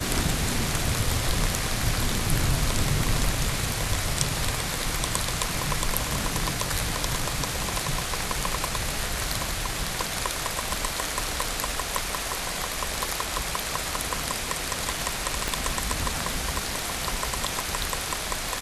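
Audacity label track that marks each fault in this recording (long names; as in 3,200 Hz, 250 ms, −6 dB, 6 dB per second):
15.480000	15.480000	click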